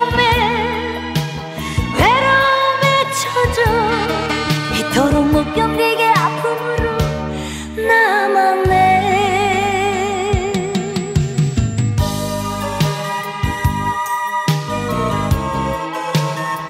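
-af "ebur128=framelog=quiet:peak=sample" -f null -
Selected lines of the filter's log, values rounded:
Integrated loudness:
  I:         -16.2 LUFS
  Threshold: -26.2 LUFS
Loudness range:
  LRA:         4.4 LU
  Threshold: -36.0 LUFS
  LRA low:   -18.9 LUFS
  LRA high:  -14.5 LUFS
Sample peak:
  Peak:       -1.6 dBFS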